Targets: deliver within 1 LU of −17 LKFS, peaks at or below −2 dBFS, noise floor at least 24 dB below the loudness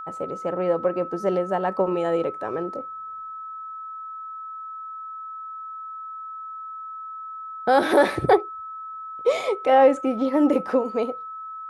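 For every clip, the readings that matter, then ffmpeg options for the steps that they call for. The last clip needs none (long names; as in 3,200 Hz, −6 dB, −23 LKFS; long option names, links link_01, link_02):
interfering tone 1,300 Hz; level of the tone −33 dBFS; integrated loudness −22.5 LKFS; sample peak −6.0 dBFS; target loudness −17.0 LKFS
→ -af "bandreject=frequency=1300:width=30"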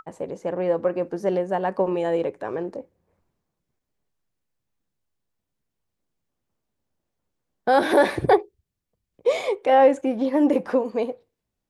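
interfering tone none found; integrated loudness −22.5 LKFS; sample peak −6.5 dBFS; target loudness −17.0 LKFS
→ -af "volume=5.5dB,alimiter=limit=-2dB:level=0:latency=1"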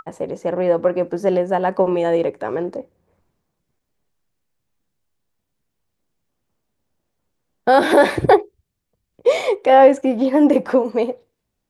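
integrated loudness −17.0 LKFS; sample peak −2.0 dBFS; background noise floor −77 dBFS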